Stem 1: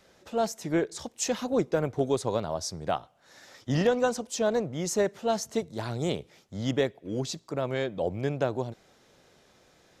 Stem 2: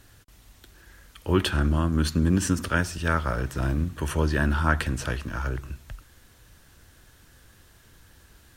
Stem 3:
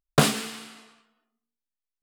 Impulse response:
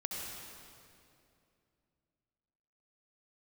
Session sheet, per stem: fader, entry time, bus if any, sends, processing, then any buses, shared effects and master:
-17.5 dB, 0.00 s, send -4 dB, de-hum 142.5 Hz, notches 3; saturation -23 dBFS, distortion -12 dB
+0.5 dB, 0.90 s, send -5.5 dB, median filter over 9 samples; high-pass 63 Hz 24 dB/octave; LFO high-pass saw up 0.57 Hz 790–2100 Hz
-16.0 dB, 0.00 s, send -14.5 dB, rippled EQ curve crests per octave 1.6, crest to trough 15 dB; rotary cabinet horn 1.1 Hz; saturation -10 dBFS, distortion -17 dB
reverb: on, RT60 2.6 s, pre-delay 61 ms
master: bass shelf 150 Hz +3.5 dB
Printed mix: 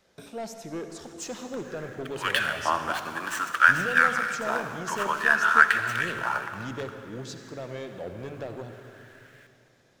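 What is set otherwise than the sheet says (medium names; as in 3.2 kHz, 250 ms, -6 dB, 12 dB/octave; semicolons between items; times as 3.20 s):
stem 1 -17.5 dB -> -9.0 dB; stem 3 -16.0 dB -> -26.0 dB; master: missing bass shelf 150 Hz +3.5 dB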